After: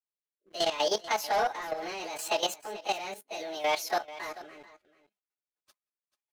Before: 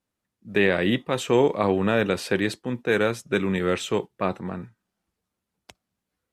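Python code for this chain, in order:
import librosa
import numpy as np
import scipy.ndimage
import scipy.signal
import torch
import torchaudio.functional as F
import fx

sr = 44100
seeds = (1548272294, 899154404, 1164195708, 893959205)

p1 = fx.pitch_bins(x, sr, semitones=9.0)
p2 = scipy.signal.sosfilt(scipy.signal.butter(2, 630.0, 'highpass', fs=sr, output='sos'), p1)
p3 = p2 + 0.33 * np.pad(p2, (int(4.8 * sr / 1000.0), 0))[:len(p2)]
p4 = fx.leveller(p3, sr, passes=2)
p5 = fx.rotary_switch(p4, sr, hz=0.7, then_hz=7.0, switch_at_s=4.33)
p6 = fx.level_steps(p5, sr, step_db=12)
p7 = p6 + fx.echo_single(p6, sr, ms=438, db=-16.5, dry=0)
y = p7 * 10.0 ** (-1.5 / 20.0)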